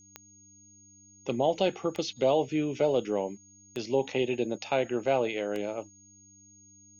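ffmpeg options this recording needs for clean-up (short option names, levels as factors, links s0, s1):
-af "adeclick=t=4,bandreject=f=99.2:t=h:w=4,bandreject=f=198.4:t=h:w=4,bandreject=f=297.6:t=h:w=4,bandreject=f=6600:w=30,agate=range=0.0891:threshold=0.00355"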